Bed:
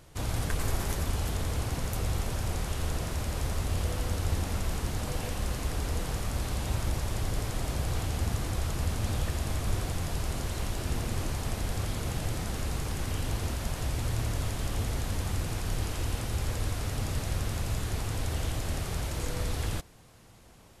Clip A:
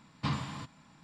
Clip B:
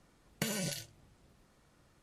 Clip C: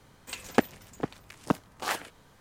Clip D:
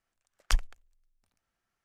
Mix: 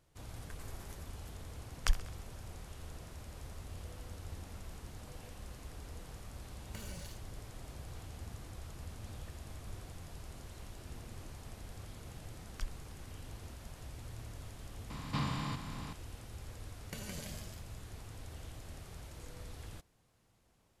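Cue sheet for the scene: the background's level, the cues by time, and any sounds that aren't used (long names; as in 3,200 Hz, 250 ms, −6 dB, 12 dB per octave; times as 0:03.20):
bed −16.5 dB
0:01.36: mix in D −4 dB + feedback echo with a high-pass in the loop 65 ms, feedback 64%, level −17 dB
0:06.33: mix in B −17.5 dB + power curve on the samples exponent 0.7
0:12.09: mix in D −13 dB + brickwall limiter −11.5 dBFS
0:14.90: mix in A −5 dB + compressor on every frequency bin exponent 0.4
0:16.51: mix in B −11 dB + delay with pitch and tempo change per echo 189 ms, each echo +1 semitone, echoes 2
not used: C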